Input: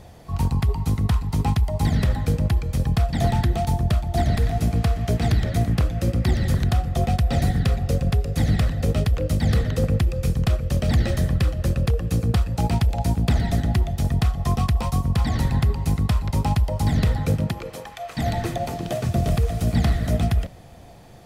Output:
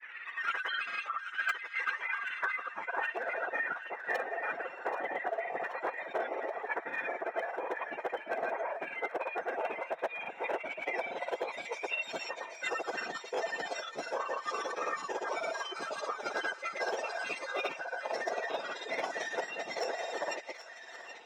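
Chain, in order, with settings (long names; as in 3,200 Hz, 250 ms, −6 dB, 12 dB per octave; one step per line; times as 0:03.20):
frequency axis turned over on the octave scale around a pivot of 1,300 Hz
in parallel at +2 dB: brickwall limiter −21.5 dBFS, peak gain reduction 8.5 dB
on the sum: reverb reduction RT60 1.4 s
band-pass filter sweep 3,600 Hz → 820 Hz, 0:01.79–0:03.23
granular cloud 100 ms, grains 18 per second, pitch spread up and down by 0 semitones
low-pass filter sweep 2,200 Hz → 6,500 Hz, 0:09.89–0:11.70
speech leveller within 5 dB 0.5 s
gain into a clipping stage and back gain 29.5 dB
on a send: delay with a high-pass on its return 780 ms, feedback 61%, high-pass 1,700 Hz, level −10 dB
on the sum: formants moved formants −5 semitones
high-pass filter 610 Hz 12 dB per octave
notch filter 4,600 Hz, Q 5.1
level +7.5 dB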